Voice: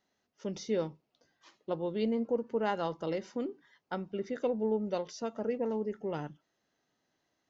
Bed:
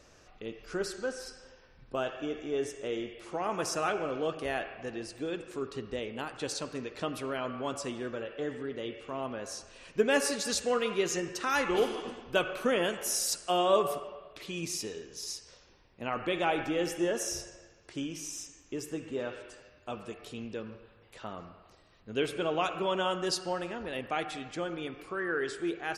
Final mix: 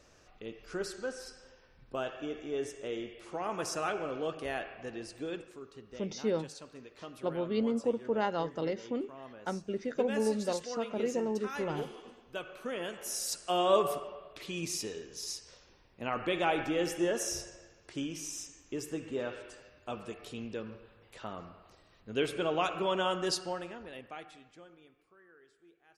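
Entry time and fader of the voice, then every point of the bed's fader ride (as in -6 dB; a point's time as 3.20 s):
5.55 s, +0.5 dB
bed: 5.38 s -3 dB
5.60 s -12 dB
12.47 s -12 dB
13.71 s -0.5 dB
23.31 s -0.5 dB
25.36 s -29.5 dB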